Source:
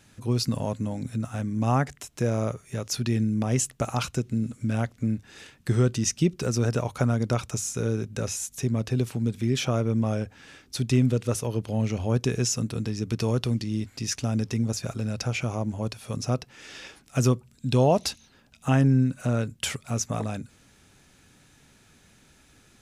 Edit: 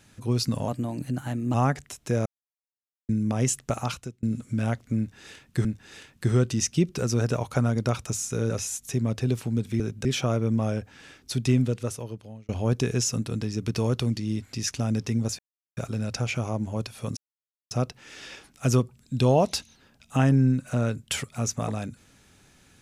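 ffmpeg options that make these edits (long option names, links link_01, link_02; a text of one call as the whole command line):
ffmpeg -i in.wav -filter_complex "[0:a]asplit=13[link_01][link_02][link_03][link_04][link_05][link_06][link_07][link_08][link_09][link_10][link_11][link_12][link_13];[link_01]atrim=end=0.684[link_14];[link_02]atrim=start=0.68:end=1.65,asetpts=PTS-STARTPTS,asetrate=49833,aresample=44100[link_15];[link_03]atrim=start=1.646:end=2.37,asetpts=PTS-STARTPTS,afade=type=out:start_time=0.72:duration=0.004:curve=hsin[link_16];[link_04]atrim=start=2.37:end=3.2,asetpts=PTS-STARTPTS,volume=0[link_17];[link_05]atrim=start=3.2:end=4.34,asetpts=PTS-STARTPTS,afade=type=in:duration=0.004:curve=hsin,afade=type=out:start_time=0.68:duration=0.46[link_18];[link_06]atrim=start=4.34:end=5.762,asetpts=PTS-STARTPTS,afade=type=in:duration=0.004:curve=hsin[link_19];[link_07]atrim=start=5.088:end=7.942[link_20];[link_08]atrim=start=8.188:end=9.492[link_21];[link_09]atrim=start=7.938:end=8.192[link_22];[link_10]atrim=start=9.488:end=11.93,asetpts=PTS-STARTPTS,afade=type=out:start_time=1.442:duration=1[link_23];[link_11]atrim=start=11.93:end=14.83,asetpts=PTS-STARTPTS,afade=type=in:duration=0.004:curve=hsin,afade=type=out:start_time=2.896:duration=0.004:curve=hsin,apad=pad_dur=0.38[link_24];[link_12]atrim=start=14.83:end=16.23,asetpts=PTS-STARTPTS,afade=type=in:duration=0.004:curve=hsin,afade=type=out:start_time=1.396:duration=0.004:curve=hsin,apad=pad_dur=0.54[link_25];[link_13]atrim=start=16.23,asetpts=PTS-STARTPTS,afade=type=in:duration=0.004:curve=hsin[link_26];[link_14][link_15]acrossfade=duration=0.004:curve1=hsin:curve2=hsin[link_27];[link_16][link_17][link_18][link_19]concat=n=4:v=0:a=1[link_28];[link_27][link_28]acrossfade=duration=0.004:curve1=hsin:curve2=hsin[link_29];[link_29][link_20]acrossfade=duration=0.004:curve1=hsin:curve2=hsin[link_30];[link_30][link_21]acrossfade=duration=0.004:curve1=hsin:curve2=hsin[link_31];[link_31][link_22]acrossfade=duration=0.004:curve1=hsin:curve2=hsin[link_32];[link_23][link_24][link_25][link_26]concat=n=4:v=0:a=1[link_33];[link_32][link_33]acrossfade=duration=0.004:curve1=hsin:curve2=hsin" out.wav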